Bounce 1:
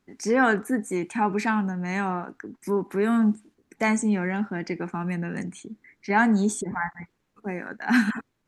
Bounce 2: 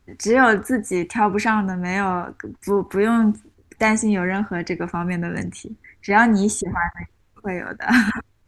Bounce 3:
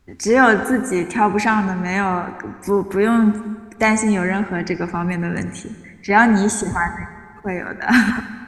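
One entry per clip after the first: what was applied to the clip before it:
low shelf with overshoot 120 Hz +13 dB, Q 1.5; level +6.5 dB
convolution reverb RT60 1.8 s, pre-delay 68 ms, DRR 12 dB; level +2 dB

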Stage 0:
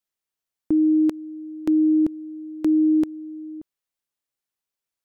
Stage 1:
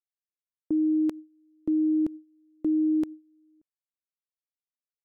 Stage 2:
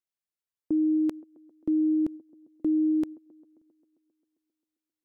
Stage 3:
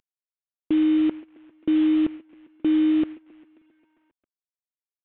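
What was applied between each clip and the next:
noise gate with hold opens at −23 dBFS; level −6 dB
delay with a band-pass on its return 133 ms, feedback 70%, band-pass 410 Hz, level −20 dB
variable-slope delta modulation 16 kbit/s; level +5 dB

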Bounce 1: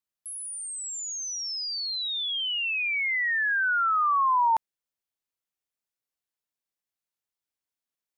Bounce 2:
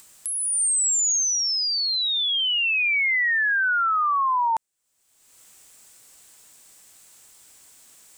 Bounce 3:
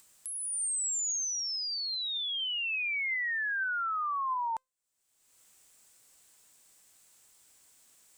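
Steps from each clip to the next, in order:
parametric band 7,900 Hz +12.5 dB 0.59 octaves; brickwall limiter −24 dBFS, peak gain reduction 6 dB; upward compression, threshold −34 dBFS; level +5.5 dB
tuned comb filter 520 Hz, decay 0.24 s, harmonics all, mix 30%; level −7.5 dB

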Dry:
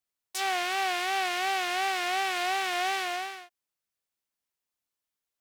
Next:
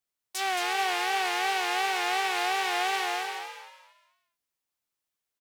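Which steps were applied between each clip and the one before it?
echo with shifted repeats 221 ms, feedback 30%, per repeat +76 Hz, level −5.5 dB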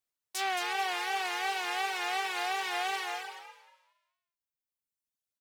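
reverb reduction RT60 1.8 s
level −2 dB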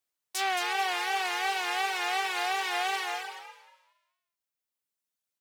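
low-shelf EQ 140 Hz −9 dB
level +3 dB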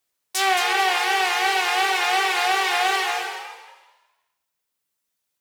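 dense smooth reverb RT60 1 s, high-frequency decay 0.95×, DRR 4.5 dB
level +8 dB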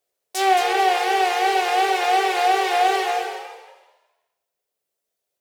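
flat-topped bell 520 Hz +12 dB 1.2 octaves
level −3.5 dB

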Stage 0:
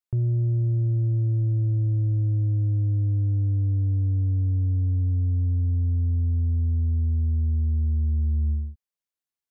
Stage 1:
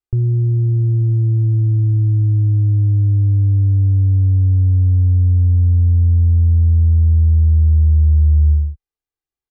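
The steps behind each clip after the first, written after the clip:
spectral tilt −2.5 dB per octave
notch filter 540 Hz, Q 17
comb filter 2.5 ms, depth 80%
level −1 dB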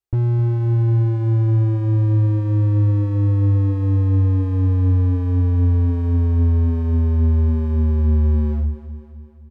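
notch comb filter 300 Hz
gain into a clipping stage and back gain 17.5 dB
repeating echo 259 ms, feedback 53%, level −12 dB
level +2 dB

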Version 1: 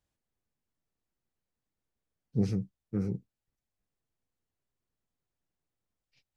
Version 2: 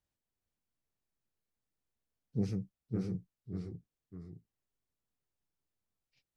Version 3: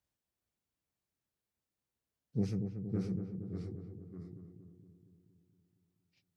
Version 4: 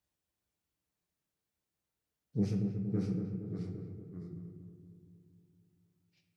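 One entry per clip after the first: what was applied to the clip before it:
delay with pitch and tempo change per echo 415 ms, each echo −1 semitone, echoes 2, each echo −6 dB; level −5 dB
high-pass filter 51 Hz; on a send: feedback echo with a low-pass in the loop 233 ms, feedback 63%, low-pass 970 Hz, level −6 dB
on a send at −3.5 dB: high-pass filter 59 Hz + convolution reverb RT60 1.3 s, pre-delay 6 ms

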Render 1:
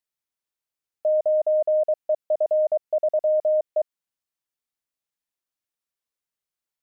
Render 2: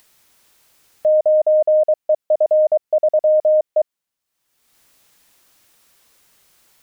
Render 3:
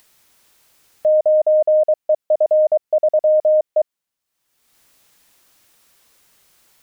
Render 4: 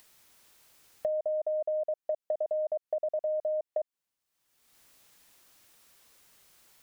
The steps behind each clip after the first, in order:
upward compression, threshold −42 dBFS; level +6.5 dB
no processing that can be heard
downward compressor 12 to 1, threshold −24 dBFS, peak gain reduction 12 dB; level −4.5 dB

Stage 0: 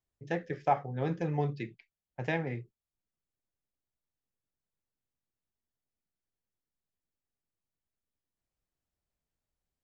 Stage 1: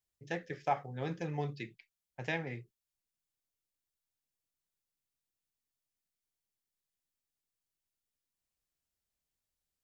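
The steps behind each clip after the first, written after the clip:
high-shelf EQ 2,100 Hz +10.5 dB
level −6 dB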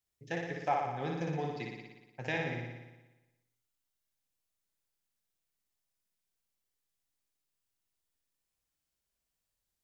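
flutter between parallel walls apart 10.1 metres, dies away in 1.1 s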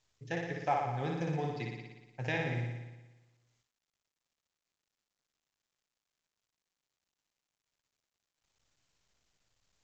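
parametric band 120 Hz +7.5 dB 0.4 octaves
mu-law 128 kbit/s 16,000 Hz

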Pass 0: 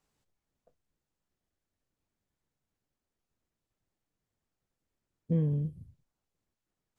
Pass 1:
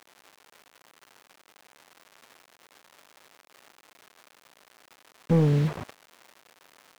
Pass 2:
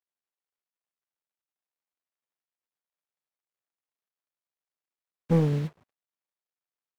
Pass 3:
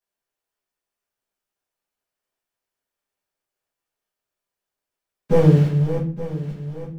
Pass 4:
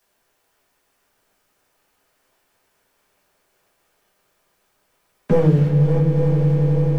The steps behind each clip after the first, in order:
surface crackle 580 per second −50 dBFS; bit-depth reduction 8 bits, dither none; mid-hump overdrive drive 20 dB, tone 1,000 Hz, clips at −19 dBFS; level +7.5 dB
expander for the loud parts 2.5 to 1, over −47 dBFS
feedback delay that plays each chunk backwards 434 ms, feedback 58%, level −10 dB; convolution reverb RT60 0.45 s, pre-delay 5 ms, DRR −8 dB
echo that builds up and dies away 89 ms, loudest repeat 8, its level −17 dB; multiband upward and downward compressor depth 70%

